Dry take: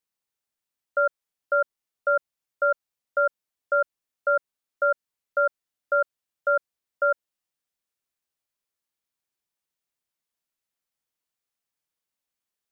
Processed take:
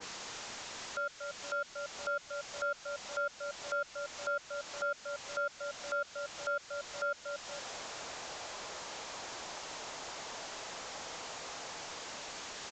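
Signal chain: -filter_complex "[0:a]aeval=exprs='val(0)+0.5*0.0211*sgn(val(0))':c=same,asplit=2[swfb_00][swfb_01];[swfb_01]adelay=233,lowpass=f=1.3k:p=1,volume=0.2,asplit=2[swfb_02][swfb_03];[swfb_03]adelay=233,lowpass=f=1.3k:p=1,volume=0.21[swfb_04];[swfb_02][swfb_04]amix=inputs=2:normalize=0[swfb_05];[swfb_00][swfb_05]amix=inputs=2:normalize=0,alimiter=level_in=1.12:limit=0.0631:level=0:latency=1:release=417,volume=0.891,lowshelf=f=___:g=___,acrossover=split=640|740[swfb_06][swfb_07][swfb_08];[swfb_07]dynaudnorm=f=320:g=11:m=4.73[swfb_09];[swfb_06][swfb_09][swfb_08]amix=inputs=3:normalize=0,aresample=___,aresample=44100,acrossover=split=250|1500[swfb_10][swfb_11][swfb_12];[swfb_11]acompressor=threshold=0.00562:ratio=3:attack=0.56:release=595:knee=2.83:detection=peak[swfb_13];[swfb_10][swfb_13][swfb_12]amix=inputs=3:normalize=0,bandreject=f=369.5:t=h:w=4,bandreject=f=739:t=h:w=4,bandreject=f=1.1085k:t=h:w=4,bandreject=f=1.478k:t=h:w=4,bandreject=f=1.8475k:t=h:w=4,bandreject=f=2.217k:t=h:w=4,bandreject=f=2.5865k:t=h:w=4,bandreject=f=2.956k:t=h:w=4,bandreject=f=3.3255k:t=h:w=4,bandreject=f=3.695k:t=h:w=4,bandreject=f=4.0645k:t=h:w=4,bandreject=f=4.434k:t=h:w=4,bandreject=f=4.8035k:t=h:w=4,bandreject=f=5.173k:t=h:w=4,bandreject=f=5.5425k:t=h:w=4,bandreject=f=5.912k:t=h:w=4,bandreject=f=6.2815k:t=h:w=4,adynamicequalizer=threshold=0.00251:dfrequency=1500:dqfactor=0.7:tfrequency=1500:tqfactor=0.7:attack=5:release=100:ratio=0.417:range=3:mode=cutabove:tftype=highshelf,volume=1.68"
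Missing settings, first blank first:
250, -10, 16000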